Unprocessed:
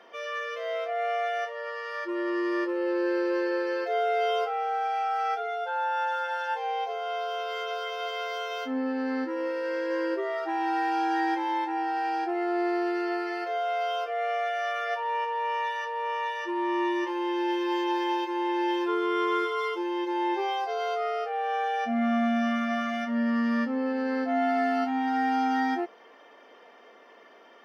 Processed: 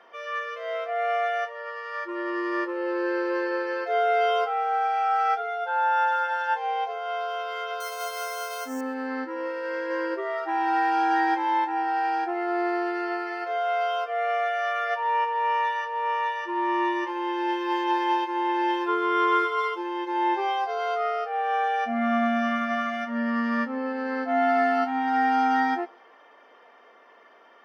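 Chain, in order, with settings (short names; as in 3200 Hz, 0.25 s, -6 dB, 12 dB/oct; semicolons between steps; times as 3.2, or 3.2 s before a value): bell 1200 Hz +7.5 dB 2 oct; 7.8–8.81 careless resampling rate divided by 6×, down none, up hold; thinning echo 0.133 s, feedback 48%, level -23 dB; upward expander 1.5:1, over -31 dBFS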